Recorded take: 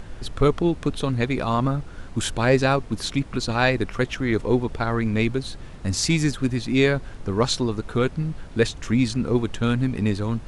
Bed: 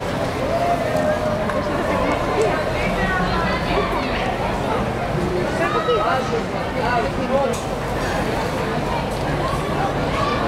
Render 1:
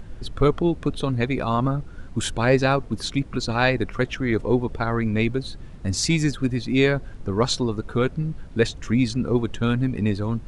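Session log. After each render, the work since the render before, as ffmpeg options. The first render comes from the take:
-af "afftdn=nr=7:nf=-39"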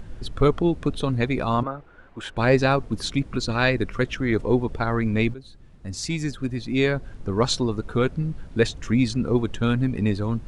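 -filter_complex "[0:a]asettb=1/sr,asplit=3[a][b][c];[a]atrim=end=1.634[d];[b]atrim=start=1.63:end=2.37,asetpts=PTS-STARTPTS,afade=t=in:d=0.004:c=qsin,afade=t=out:st=0.736:d=0.004:c=qsin,acrossover=split=400 2900:gain=0.158 1 0.126[e][f][g];[e][f][g]amix=inputs=3:normalize=0[h];[c]atrim=start=2.366[i];[d][h]acrossfade=d=0.004:c1=hsin:c2=qsin[j];[j][i]acrossfade=d=0.004:c1=qsin:c2=hsin,asettb=1/sr,asplit=3[k][l][m];[k]atrim=end=3.404[n];[l]atrim=start=3.4:end=4.19,asetpts=PTS-STARTPTS,afade=t=in:d=0.004:c=qsin,afade=t=out:st=0.786:d=0.004:c=qsin,equalizer=f=780:t=o:w=0.41:g=-6[o];[m]atrim=start=4.186[p];[n][o]acrossfade=d=0.004:c1=hsin:c2=qsin[q];[q][p]acrossfade=d=0.004:c1=qsin:c2=hsin,asplit=2[r][s];[r]atrim=end=5.34,asetpts=PTS-STARTPTS,afade=t=out:st=5.336:d=0.004:c=hsin:silence=0.177828[t];[s]atrim=start=5.34,asetpts=PTS-STARTPTS,afade=t=in:d=2.14:silence=0.177828[u];[t][u]concat=n=2:v=0:a=1"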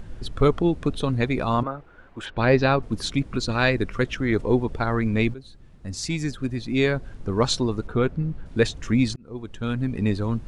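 -filter_complex "[0:a]asplit=3[a][b][c];[a]afade=t=out:st=2.25:d=0.02[d];[b]lowpass=f=5k:w=0.5412,lowpass=f=5k:w=1.3066,afade=t=in:st=2.25:d=0.02,afade=t=out:st=2.81:d=0.02[e];[c]afade=t=in:st=2.81:d=0.02[f];[d][e][f]amix=inputs=3:normalize=0,asettb=1/sr,asplit=3[g][h][i];[g]atrim=end=7.874[j];[h]atrim=start=7.87:end=8.46,asetpts=PTS-STARTPTS,afade=t=in:d=0.004:c=qsin,afade=t=out:st=0.586:d=0.004:c=qsin,highshelf=f=3.9k:g=-11.5[k];[i]atrim=start=8.456[l];[j][k]acrossfade=d=0.004:c1=hsin:c2=qsin[m];[m][l]acrossfade=d=0.004:c1=qsin:c2=hsin,asplit=2[n][o];[n]atrim=end=9.16,asetpts=PTS-STARTPTS,afade=t=out:st=9.156:d=0.004:c=hsin[p];[o]atrim=start=9.16,asetpts=PTS-STARTPTS,afade=t=in:d=0.95[q];[p][q]concat=n=2:v=0:a=1"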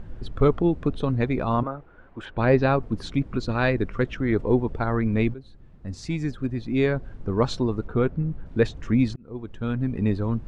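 -af "lowpass=f=1.5k:p=1"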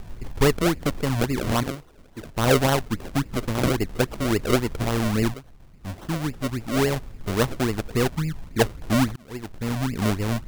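-af "acrusher=samples=36:mix=1:aa=0.000001:lfo=1:lforange=36:lforate=3.6"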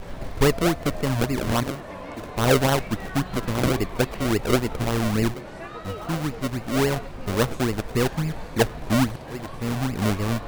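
-filter_complex "[1:a]volume=-17.5dB[a];[0:a][a]amix=inputs=2:normalize=0"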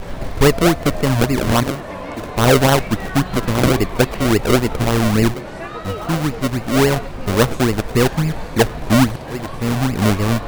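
-af "volume=7.5dB,alimiter=limit=-3dB:level=0:latency=1"

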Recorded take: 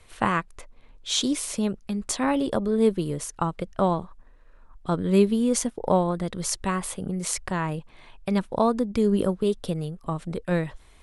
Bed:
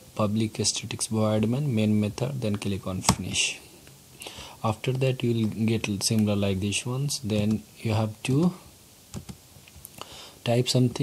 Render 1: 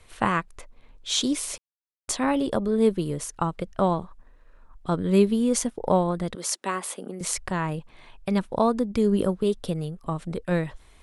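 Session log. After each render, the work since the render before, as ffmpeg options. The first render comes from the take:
-filter_complex "[0:a]asettb=1/sr,asplit=3[a][b][c];[a]atrim=end=6.354[d];[b]atrim=start=6.35:end=7.21,asetpts=PTS-STARTPTS,afade=t=in:d=0.004:c=qsin,afade=t=out:st=0.856:d=0.004:c=qsin,highpass=f=250:w=0.5412,highpass=f=250:w=1.3066[e];[c]atrim=start=7.206[f];[d][e]acrossfade=d=0.004:c1=hsin:c2=qsin[g];[g][f]acrossfade=d=0.004:c1=qsin:c2=hsin,asplit=3[h][i][j];[h]atrim=end=1.58,asetpts=PTS-STARTPTS,afade=t=out:st=1.576:d=0.004:c=hsin[k];[i]atrim=start=1.58:end=2.08,asetpts=PTS-STARTPTS,volume=0[l];[j]atrim=start=2.08,asetpts=PTS-STARTPTS,afade=t=in:d=0.004:c=hsin[m];[k][l][m]concat=n=3:v=0:a=1"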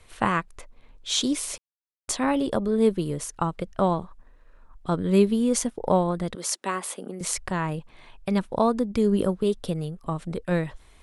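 -af anull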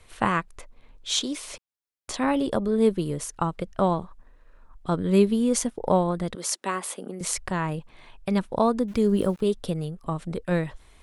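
-filter_complex "[0:a]asettb=1/sr,asplit=3[a][b][c];[a]atrim=end=1.194[d];[b]atrim=start=1.19:end=2.14,asetpts=PTS-STARTPTS,afade=t=in:d=0.004:c=qsin,afade=t=out:st=0.946:d=0.004:c=qsin,acrossover=split=320|4800[e][f][g];[e]acompressor=threshold=-37dB:ratio=4[h];[f]acompressor=threshold=-30dB:ratio=4[i];[g]acompressor=threshold=-42dB:ratio=4[j];[h][i][j]amix=inputs=3:normalize=0[k];[c]atrim=start=2.136[l];[d][k]acrossfade=d=0.004:c1=hsin:c2=qsin[m];[m][l]acrossfade=d=0.004:c1=qsin:c2=hsin,asettb=1/sr,asplit=3[n][o][p];[n]atrim=end=8.884[q];[o]atrim=start=8.88:end=9.41,asetpts=PTS-STARTPTS,afade=t=in:d=0.004:c=qsin,afade=t=out:st=0.526:d=0.004:c=qsin,aeval=exprs='val(0)*gte(abs(val(0)),0.00596)':c=same[r];[p]atrim=start=9.406[s];[q][r]acrossfade=d=0.004:c1=hsin:c2=qsin[t];[t][s]acrossfade=d=0.004:c1=qsin:c2=hsin"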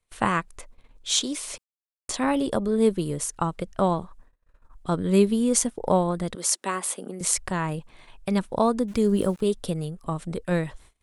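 -af "agate=range=-26dB:threshold=-48dB:ratio=16:detection=peak,equalizer=f=8.7k:t=o:w=1.1:g=6"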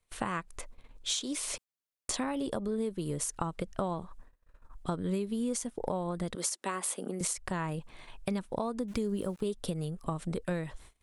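-af "alimiter=limit=-13dB:level=0:latency=1:release=287,acompressor=threshold=-30dB:ratio=6"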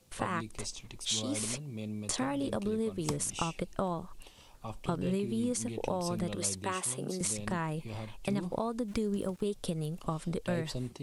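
-filter_complex "[1:a]volume=-16dB[a];[0:a][a]amix=inputs=2:normalize=0"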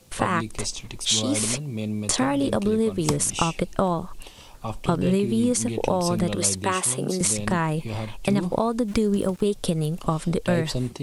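-af "volume=10.5dB"

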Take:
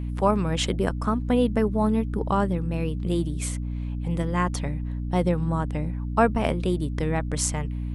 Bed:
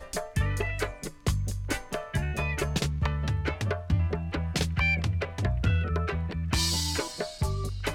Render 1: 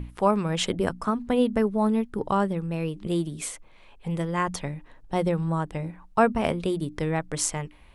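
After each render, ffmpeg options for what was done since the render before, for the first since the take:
-af "bandreject=f=60:t=h:w=6,bandreject=f=120:t=h:w=6,bandreject=f=180:t=h:w=6,bandreject=f=240:t=h:w=6,bandreject=f=300:t=h:w=6"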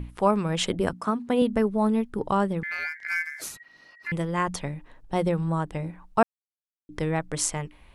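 -filter_complex "[0:a]asettb=1/sr,asplit=3[a][b][c];[a]atrim=end=0.934[d];[b]atrim=start=0.93:end=1.42,asetpts=PTS-STARTPTS,afade=t=in:d=0.004:c=qsin,afade=t=out:st=0.486:d=0.004:c=qsin,highpass=140[e];[c]atrim=start=1.416[f];[d][e]acrossfade=d=0.004:c1=hsin:c2=qsin[g];[g][f]acrossfade=d=0.004:c1=qsin:c2=hsin,asettb=1/sr,asplit=3[h][i][j];[h]atrim=end=2.634[k];[i]atrim=start=2.63:end=4.12,asetpts=PTS-STARTPTS,afade=t=in:d=0.004:c=qsin,afade=t=out:st=1.486:d=0.004:c=qsin,aeval=exprs='val(0)*sin(2*PI*1900*n/s)':c=same[l];[j]atrim=start=4.116[m];[k][l]acrossfade=d=0.004:c1=hsin:c2=qsin[n];[n][m]acrossfade=d=0.004:c1=qsin:c2=hsin,asplit=3[o][p][q];[o]atrim=end=6.23,asetpts=PTS-STARTPTS,afade=t=out:st=6.226:d=0.004:c=hsin[r];[p]atrim=start=6.23:end=6.89,asetpts=PTS-STARTPTS,volume=0[s];[q]atrim=start=6.89,asetpts=PTS-STARTPTS,afade=t=in:d=0.004:c=hsin[t];[r][s][t]concat=n=3:v=0:a=1"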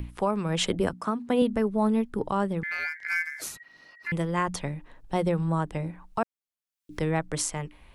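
-filter_complex "[0:a]acrossover=split=350|1700[a][b][c];[c]acompressor=mode=upward:threshold=-57dB:ratio=2.5[d];[a][b][d]amix=inputs=3:normalize=0,alimiter=limit=-14dB:level=0:latency=1:release=264"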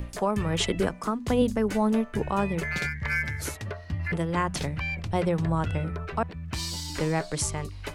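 -filter_complex "[1:a]volume=-6dB[a];[0:a][a]amix=inputs=2:normalize=0"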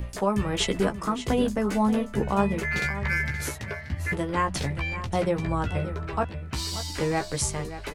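-filter_complex "[0:a]asplit=2[a][b];[b]adelay=15,volume=-5.5dB[c];[a][c]amix=inputs=2:normalize=0,aecho=1:1:581:0.237"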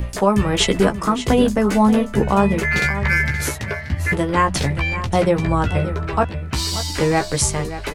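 -af "volume=8.5dB,alimiter=limit=-2dB:level=0:latency=1"

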